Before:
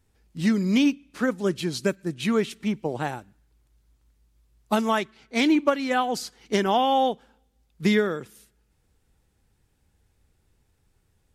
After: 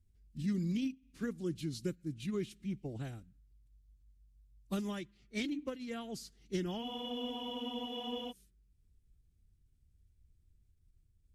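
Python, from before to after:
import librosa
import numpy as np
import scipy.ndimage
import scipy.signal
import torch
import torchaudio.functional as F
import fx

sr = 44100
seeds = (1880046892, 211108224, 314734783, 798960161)

y = fx.tone_stack(x, sr, knobs='10-0-1')
y = fx.pitch_keep_formants(y, sr, semitones=-1.5)
y = fx.spec_freeze(y, sr, seeds[0], at_s=6.85, hold_s=1.44)
y = F.gain(torch.from_numpy(y), 7.0).numpy()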